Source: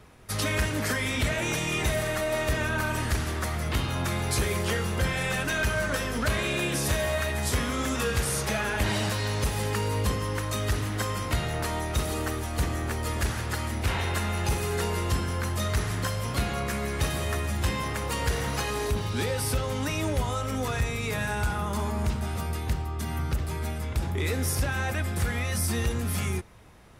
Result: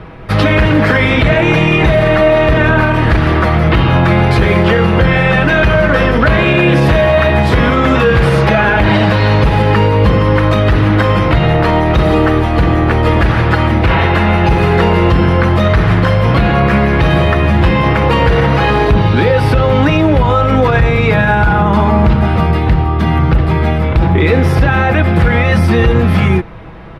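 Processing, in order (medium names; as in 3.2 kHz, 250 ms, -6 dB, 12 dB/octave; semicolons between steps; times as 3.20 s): distance through air 390 m; comb 6.1 ms, depth 40%; loudness maximiser +23 dB; trim -1 dB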